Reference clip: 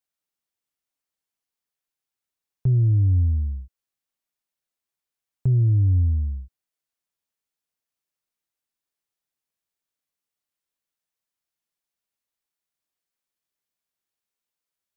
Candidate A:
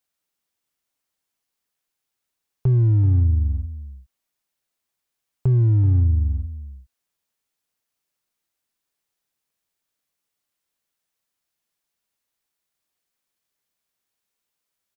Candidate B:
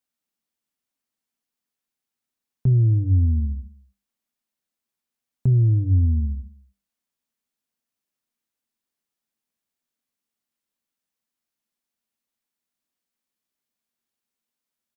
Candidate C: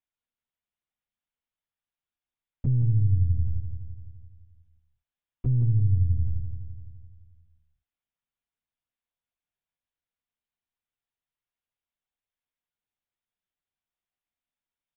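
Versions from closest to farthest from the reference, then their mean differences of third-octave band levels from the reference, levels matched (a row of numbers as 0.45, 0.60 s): B, A, C; 1.5, 3.0, 4.0 dB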